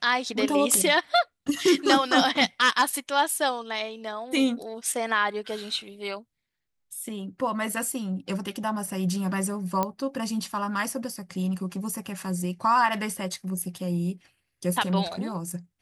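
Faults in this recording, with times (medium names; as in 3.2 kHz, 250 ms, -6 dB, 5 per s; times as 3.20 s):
9.83 s: pop -12 dBFS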